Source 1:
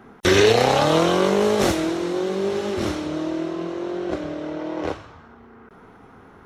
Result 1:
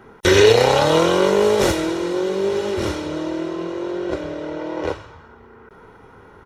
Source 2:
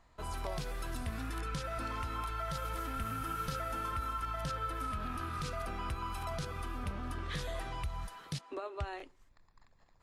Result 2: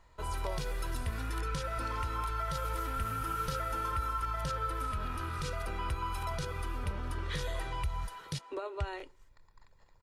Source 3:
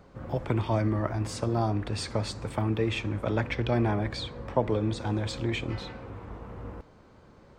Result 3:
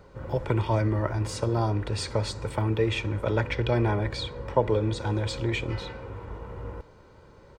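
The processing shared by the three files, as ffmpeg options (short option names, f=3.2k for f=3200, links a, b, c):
-af "aecho=1:1:2.1:0.43,volume=1.5dB"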